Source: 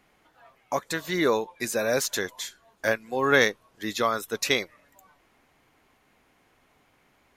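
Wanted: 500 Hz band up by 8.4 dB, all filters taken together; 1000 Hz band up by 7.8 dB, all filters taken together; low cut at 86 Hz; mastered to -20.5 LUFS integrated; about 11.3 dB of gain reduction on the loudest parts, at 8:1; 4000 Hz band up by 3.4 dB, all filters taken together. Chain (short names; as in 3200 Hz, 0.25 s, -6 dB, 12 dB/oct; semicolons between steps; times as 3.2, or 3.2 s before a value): HPF 86 Hz; bell 500 Hz +8 dB; bell 1000 Hz +7.5 dB; bell 4000 Hz +3.5 dB; compressor 8:1, threshold -21 dBFS; gain +7 dB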